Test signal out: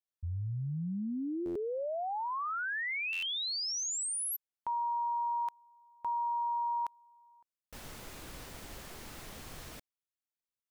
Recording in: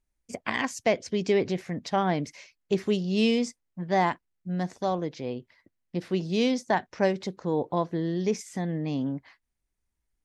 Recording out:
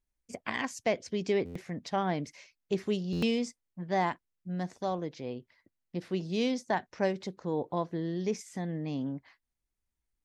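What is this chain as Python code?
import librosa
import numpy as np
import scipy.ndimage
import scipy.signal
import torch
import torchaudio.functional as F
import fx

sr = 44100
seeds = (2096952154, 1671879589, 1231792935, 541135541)

y = fx.buffer_glitch(x, sr, at_s=(1.45, 3.12), block=512, repeats=8)
y = y * librosa.db_to_amplitude(-5.0)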